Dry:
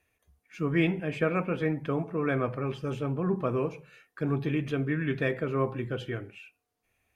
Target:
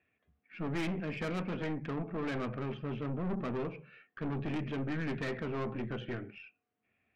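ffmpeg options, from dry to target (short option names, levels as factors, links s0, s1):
-af "highpass=110,equalizer=f=220:t=q:w=4:g=7,equalizer=f=510:t=q:w=4:g=-4,equalizer=f=930:t=q:w=4:g=-7,lowpass=f=2900:w=0.5412,lowpass=f=2900:w=1.3066,aeval=exprs='(tanh(39.8*val(0)+0.35)-tanh(0.35))/39.8':c=same"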